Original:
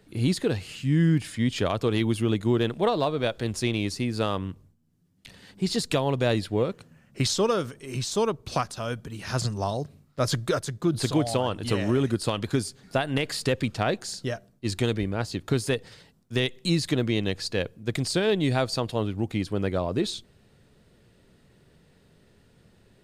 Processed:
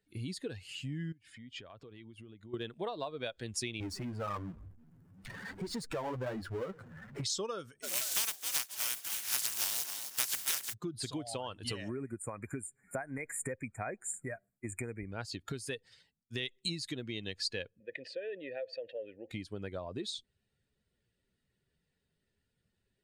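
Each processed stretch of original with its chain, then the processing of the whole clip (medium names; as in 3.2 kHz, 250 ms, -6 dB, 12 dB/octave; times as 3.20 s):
1.12–2.54 s: low-pass 2.9 kHz 6 dB/octave + compression 8:1, threshold -36 dBFS
3.80–7.24 s: resonant high shelf 2 kHz -12 dB, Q 1.5 + flange 1.1 Hz, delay 1.6 ms, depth 9.5 ms, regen -17% + power-law waveshaper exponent 0.5
7.82–10.72 s: spectral contrast reduction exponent 0.16 + frequency-shifting echo 261 ms, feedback 42%, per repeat +77 Hz, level -9.5 dB
11.89–15.11 s: brick-wall FIR band-stop 2.5–6.9 kHz + tape noise reduction on one side only encoder only
17.80–19.31 s: vowel filter e + treble shelf 4.3 kHz -12 dB + level flattener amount 50%
whole clip: expander on every frequency bin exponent 1.5; compression 5:1, threshold -37 dBFS; tilt EQ +1.5 dB/octave; trim +2 dB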